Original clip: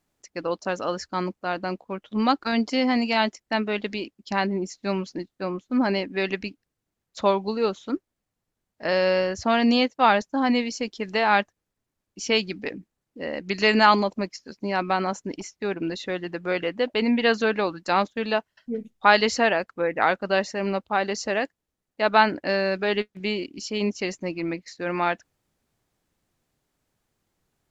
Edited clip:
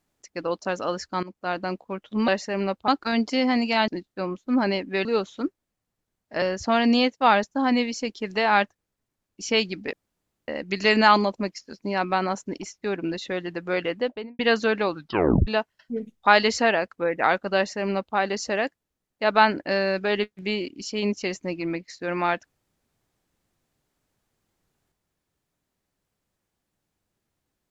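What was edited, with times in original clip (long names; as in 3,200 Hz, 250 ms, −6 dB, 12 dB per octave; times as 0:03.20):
0:01.23–0:01.48: fade in, from −18.5 dB
0:03.28–0:05.11: remove
0:06.28–0:07.54: remove
0:08.91–0:09.20: remove
0:12.71–0:13.26: fill with room tone
0:16.72–0:17.17: fade out and dull
0:17.74: tape stop 0.51 s
0:20.34–0:20.94: duplicate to 0:02.28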